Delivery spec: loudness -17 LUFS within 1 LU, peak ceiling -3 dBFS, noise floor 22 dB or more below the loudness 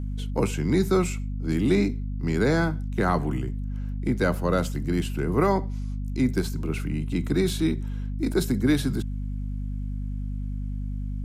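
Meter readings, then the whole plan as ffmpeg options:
hum 50 Hz; harmonics up to 250 Hz; hum level -27 dBFS; loudness -26.5 LUFS; peak -9.5 dBFS; loudness target -17.0 LUFS
-> -af "bandreject=f=50:t=h:w=6,bandreject=f=100:t=h:w=6,bandreject=f=150:t=h:w=6,bandreject=f=200:t=h:w=6,bandreject=f=250:t=h:w=6"
-af "volume=9.5dB,alimiter=limit=-3dB:level=0:latency=1"

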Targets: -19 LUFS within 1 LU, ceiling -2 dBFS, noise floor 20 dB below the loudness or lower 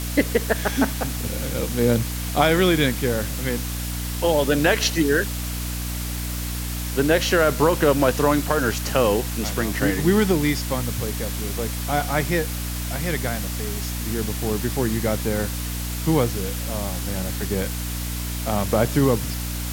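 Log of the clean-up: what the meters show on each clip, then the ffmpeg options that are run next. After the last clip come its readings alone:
hum 60 Hz; harmonics up to 300 Hz; hum level -26 dBFS; noise floor -28 dBFS; noise floor target -43 dBFS; loudness -22.5 LUFS; peak -4.0 dBFS; loudness target -19.0 LUFS
-> -af "bandreject=f=60:t=h:w=6,bandreject=f=120:t=h:w=6,bandreject=f=180:t=h:w=6,bandreject=f=240:t=h:w=6,bandreject=f=300:t=h:w=6"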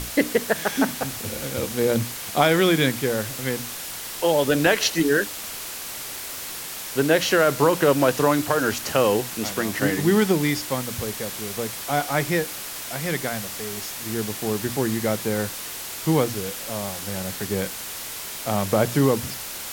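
hum none; noise floor -34 dBFS; noise floor target -44 dBFS
-> -af "afftdn=nr=10:nf=-34"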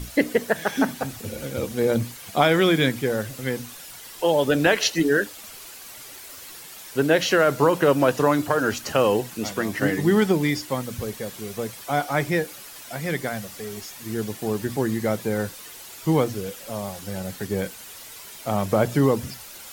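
noise floor -42 dBFS; noise floor target -44 dBFS
-> -af "afftdn=nr=6:nf=-42"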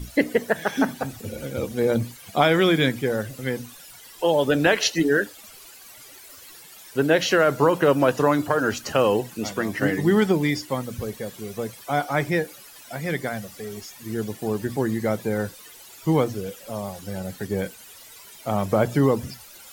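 noise floor -46 dBFS; loudness -23.5 LUFS; peak -4.5 dBFS; loudness target -19.0 LUFS
-> -af "volume=4.5dB,alimiter=limit=-2dB:level=0:latency=1"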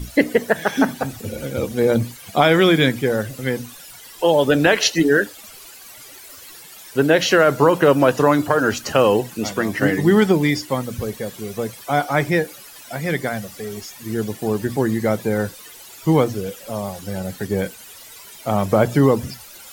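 loudness -19.0 LUFS; peak -2.0 dBFS; noise floor -41 dBFS

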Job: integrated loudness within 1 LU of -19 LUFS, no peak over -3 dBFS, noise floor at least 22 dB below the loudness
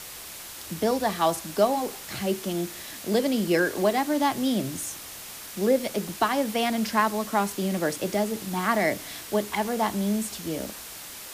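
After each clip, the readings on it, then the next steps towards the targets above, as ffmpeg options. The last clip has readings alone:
noise floor -41 dBFS; noise floor target -49 dBFS; loudness -26.5 LUFS; peak -9.5 dBFS; loudness target -19.0 LUFS
-> -af "afftdn=nr=8:nf=-41"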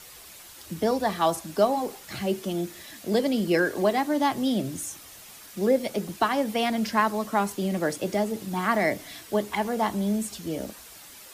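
noise floor -47 dBFS; noise floor target -49 dBFS
-> -af "afftdn=nr=6:nf=-47"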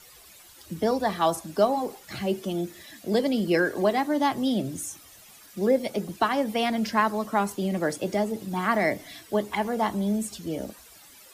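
noise floor -51 dBFS; loudness -26.5 LUFS; peak -9.5 dBFS; loudness target -19.0 LUFS
-> -af "volume=7.5dB,alimiter=limit=-3dB:level=0:latency=1"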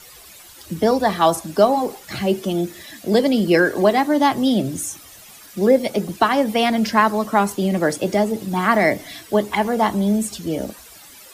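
loudness -19.0 LUFS; peak -3.0 dBFS; noise floor -44 dBFS

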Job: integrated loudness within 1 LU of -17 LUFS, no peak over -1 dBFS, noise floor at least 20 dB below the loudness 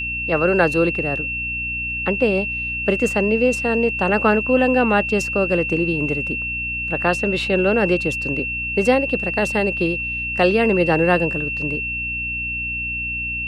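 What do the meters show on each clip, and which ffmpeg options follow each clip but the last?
hum 60 Hz; harmonics up to 300 Hz; hum level -32 dBFS; steady tone 2700 Hz; tone level -23 dBFS; loudness -19.5 LUFS; peak -2.5 dBFS; loudness target -17.0 LUFS
-> -af "bandreject=f=60:t=h:w=6,bandreject=f=120:t=h:w=6,bandreject=f=180:t=h:w=6,bandreject=f=240:t=h:w=6,bandreject=f=300:t=h:w=6"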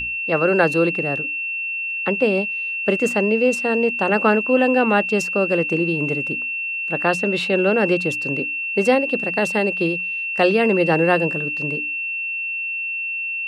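hum none; steady tone 2700 Hz; tone level -23 dBFS
-> -af "bandreject=f=2.7k:w=30"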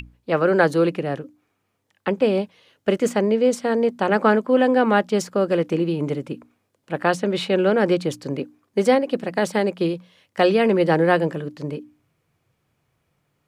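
steady tone none; loudness -21.0 LUFS; peak -3.5 dBFS; loudness target -17.0 LUFS
-> -af "volume=4dB,alimiter=limit=-1dB:level=0:latency=1"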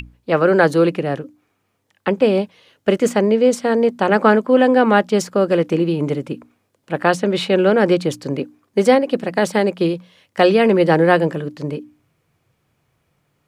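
loudness -17.0 LUFS; peak -1.0 dBFS; noise floor -69 dBFS

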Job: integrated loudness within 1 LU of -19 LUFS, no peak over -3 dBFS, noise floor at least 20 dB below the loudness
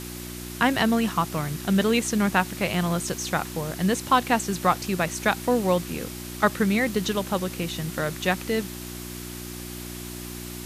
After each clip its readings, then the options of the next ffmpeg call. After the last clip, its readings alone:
hum 60 Hz; harmonics up to 360 Hz; hum level -35 dBFS; noise floor -37 dBFS; noise floor target -45 dBFS; loudness -25.0 LUFS; peak -6.5 dBFS; loudness target -19.0 LUFS
-> -af "bandreject=f=60:t=h:w=4,bandreject=f=120:t=h:w=4,bandreject=f=180:t=h:w=4,bandreject=f=240:t=h:w=4,bandreject=f=300:t=h:w=4,bandreject=f=360:t=h:w=4"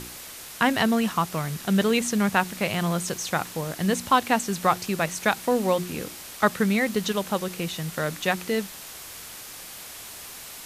hum none; noise floor -41 dBFS; noise floor target -45 dBFS
-> -af "afftdn=nr=6:nf=-41"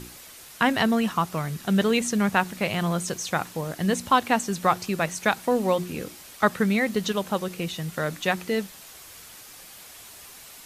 noise floor -46 dBFS; loudness -25.0 LUFS; peak -6.0 dBFS; loudness target -19.0 LUFS
-> -af "volume=6dB,alimiter=limit=-3dB:level=0:latency=1"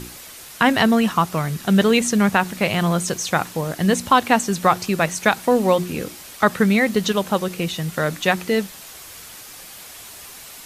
loudness -19.5 LUFS; peak -3.0 dBFS; noise floor -40 dBFS

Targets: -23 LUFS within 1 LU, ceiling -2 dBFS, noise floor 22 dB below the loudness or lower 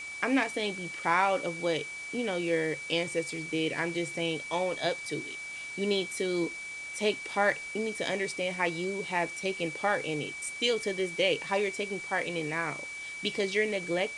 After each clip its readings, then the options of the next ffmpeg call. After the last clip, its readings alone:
steady tone 2300 Hz; tone level -38 dBFS; noise floor -41 dBFS; noise floor target -53 dBFS; loudness -30.5 LUFS; peak -12.5 dBFS; loudness target -23.0 LUFS
-> -af "bandreject=f=2.3k:w=30"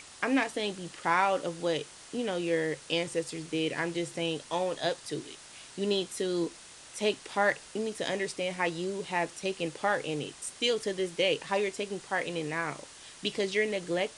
steady tone none; noise floor -50 dBFS; noise floor target -54 dBFS
-> -af "afftdn=nr=6:nf=-50"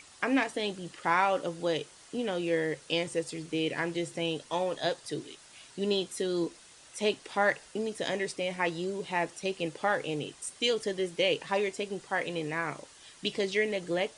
noise floor -55 dBFS; loudness -31.5 LUFS; peak -13.0 dBFS; loudness target -23.0 LUFS
-> -af "volume=8.5dB"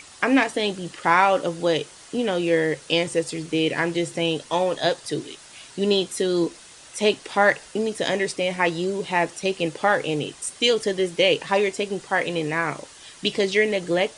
loudness -23.0 LUFS; peak -4.5 dBFS; noise floor -46 dBFS

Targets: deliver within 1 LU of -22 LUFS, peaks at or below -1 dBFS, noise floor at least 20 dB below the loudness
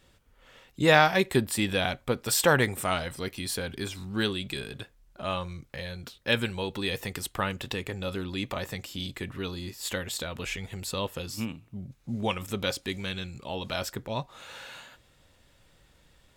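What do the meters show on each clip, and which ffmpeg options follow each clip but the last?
loudness -29.5 LUFS; peak -5.0 dBFS; loudness target -22.0 LUFS
-> -af "volume=7.5dB,alimiter=limit=-1dB:level=0:latency=1"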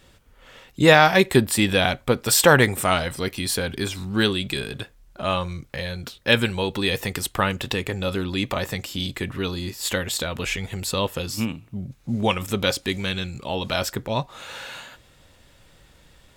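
loudness -22.5 LUFS; peak -1.0 dBFS; noise floor -55 dBFS

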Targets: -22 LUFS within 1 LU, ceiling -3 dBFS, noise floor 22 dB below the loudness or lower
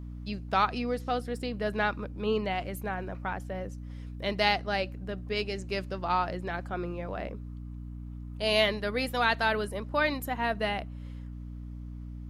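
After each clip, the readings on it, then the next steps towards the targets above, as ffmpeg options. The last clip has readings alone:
hum 60 Hz; harmonics up to 300 Hz; hum level -38 dBFS; loudness -30.5 LUFS; peak -10.0 dBFS; loudness target -22.0 LUFS
-> -af "bandreject=f=60:t=h:w=4,bandreject=f=120:t=h:w=4,bandreject=f=180:t=h:w=4,bandreject=f=240:t=h:w=4,bandreject=f=300:t=h:w=4"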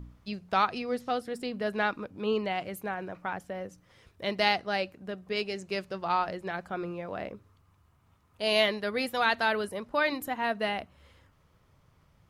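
hum none; loudness -30.5 LUFS; peak -10.0 dBFS; loudness target -22.0 LUFS
-> -af "volume=8.5dB,alimiter=limit=-3dB:level=0:latency=1"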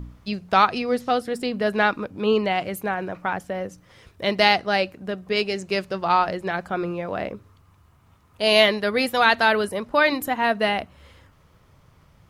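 loudness -22.5 LUFS; peak -3.0 dBFS; noise floor -57 dBFS

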